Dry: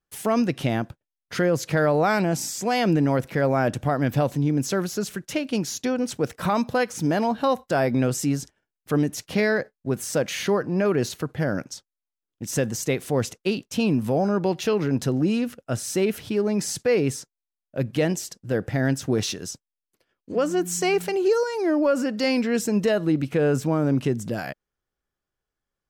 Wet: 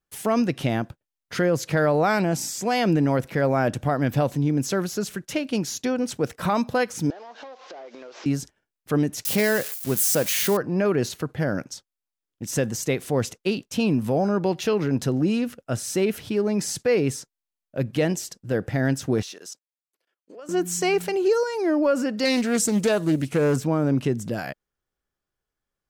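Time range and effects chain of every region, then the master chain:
0:07.10–0:08.26: linear delta modulator 32 kbit/s, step −39.5 dBFS + high-pass filter 410 Hz 24 dB per octave + downward compressor 16 to 1, threshold −37 dBFS
0:09.25–0:10.57: spike at every zero crossing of −21 dBFS + high-shelf EQ 8,900 Hz +4 dB
0:19.22–0:20.49: output level in coarse steps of 19 dB + high-pass filter 440 Hz
0:22.25–0:23.56: one scale factor per block 7 bits + parametric band 8,700 Hz +11 dB 1.3 octaves + highs frequency-modulated by the lows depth 0.25 ms
whole clip: no processing

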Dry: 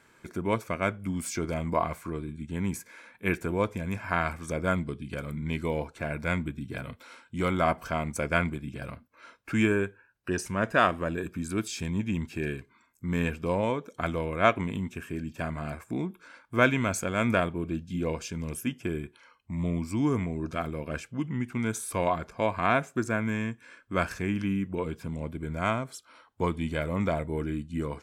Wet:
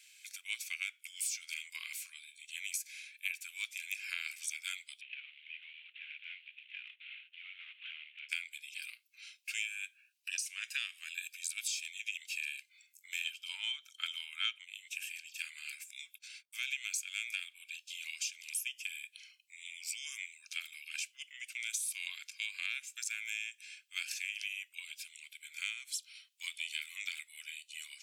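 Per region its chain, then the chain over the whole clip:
0:05.01–0:08.29: variable-slope delta modulation 16 kbit/s + downward compressor 10 to 1, threshold −35 dBFS
0:13.24–0:14.65: hollow resonant body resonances 880/1,300/3,100 Hz, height 16 dB, ringing for 20 ms + multiband upward and downward expander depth 70%
0:15.99–0:16.73: noise gate −56 dBFS, range −22 dB + bass and treble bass +7 dB, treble +3 dB + downward compressor, threshold −22 dBFS
whole clip: elliptic high-pass filter 2,500 Hz, stop band 80 dB; downward compressor 8 to 1, threshold −43 dBFS; level +9 dB

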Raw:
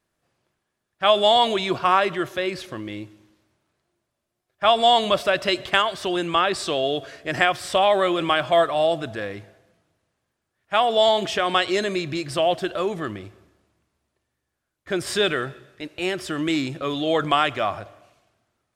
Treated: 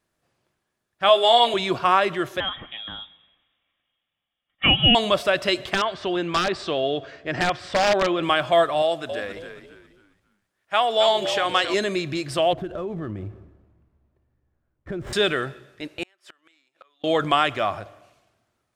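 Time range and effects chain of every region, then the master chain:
0:01.09–0:01.54: high-pass filter 350 Hz + parametric band 6,100 Hz −11.5 dB 0.23 octaves + double-tracking delay 17 ms −5.5 dB
0:02.40–0:04.95: spectral tilt +2 dB per octave + notch comb filter 530 Hz + voice inversion scrambler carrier 3,600 Hz
0:05.74–0:08.23: wrap-around overflow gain 11 dB + high-frequency loss of the air 140 metres
0:08.82–0:11.74: low-shelf EQ 270 Hz −11 dB + echo with shifted repeats 270 ms, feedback 33%, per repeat −72 Hz, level −9 dB
0:12.53–0:15.13: running median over 9 samples + spectral tilt −3.5 dB per octave + downward compressor 4 to 1, threshold −28 dBFS
0:16.03–0:17.04: high-pass filter 1,000 Hz + high-shelf EQ 2,000 Hz −7 dB + gate with flip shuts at −28 dBFS, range −29 dB
whole clip: no processing

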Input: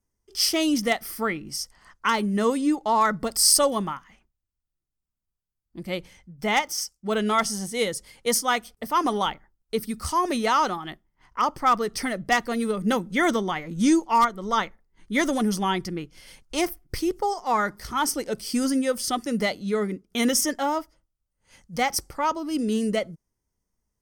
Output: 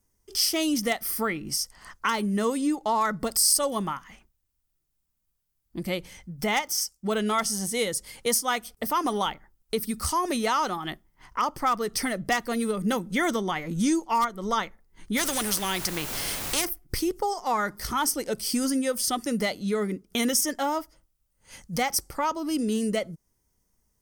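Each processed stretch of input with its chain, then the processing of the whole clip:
0:15.16–0:16.64: notch filter 6,700 Hz, Q 25 + background noise pink −49 dBFS + every bin compressed towards the loudest bin 2 to 1
whole clip: high-shelf EQ 7,900 Hz +8.5 dB; downward compressor 2 to 1, threshold −36 dBFS; level +6 dB

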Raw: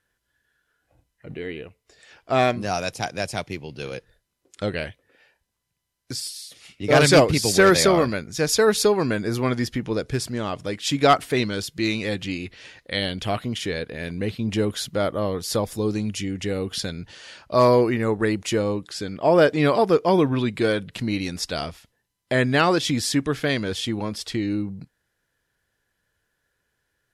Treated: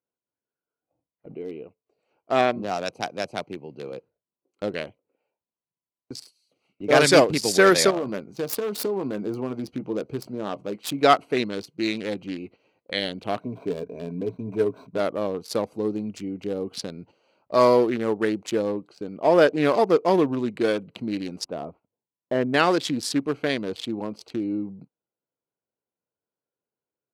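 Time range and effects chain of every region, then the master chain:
0:02.41–0:02.86: high-frequency loss of the air 100 metres + upward compression, threshold −21 dBFS
0:07.90–0:11.01: phase distortion by the signal itself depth 0.11 ms + downward compressor 12 to 1, threshold −20 dBFS + double-tracking delay 15 ms −10.5 dB
0:13.40–0:15.00: running median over 15 samples + EQ curve with evenly spaced ripples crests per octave 1.6, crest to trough 11 dB
0:21.45–0:22.54: low-pass filter 1,200 Hz + mains-hum notches 50/100 Hz
whole clip: adaptive Wiener filter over 25 samples; high-pass filter 220 Hz 12 dB per octave; noise gate −47 dBFS, range −10 dB

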